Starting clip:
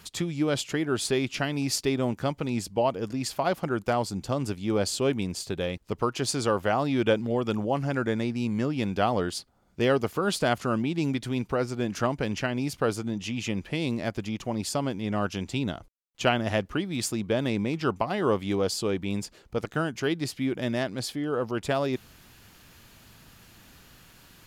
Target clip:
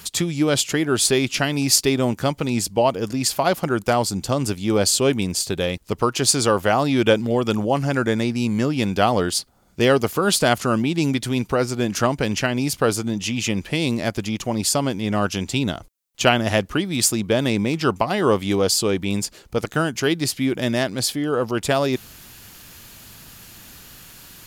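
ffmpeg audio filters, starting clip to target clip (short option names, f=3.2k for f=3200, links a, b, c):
-af "highshelf=f=4.8k:g=9.5,volume=6.5dB"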